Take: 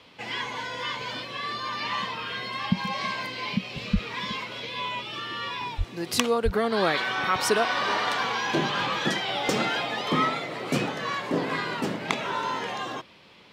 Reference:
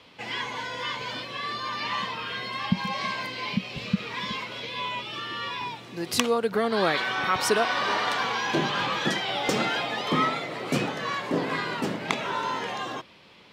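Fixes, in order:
0:03.92–0:04.04: high-pass filter 140 Hz 24 dB per octave
0:05.77–0:05.89: high-pass filter 140 Hz 24 dB per octave
0:06.44–0:06.56: high-pass filter 140 Hz 24 dB per octave

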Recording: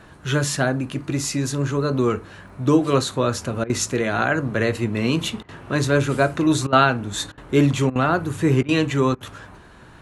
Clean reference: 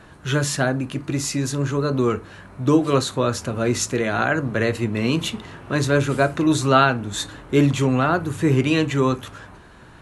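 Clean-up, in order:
click removal
repair the gap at 0:03.64/0:05.43/0:06.67/0:07.32/0:07.90/0:08.63/0:09.15, 55 ms

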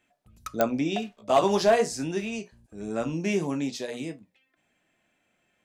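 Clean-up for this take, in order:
clipped peaks rebuilt −12 dBFS
click removal

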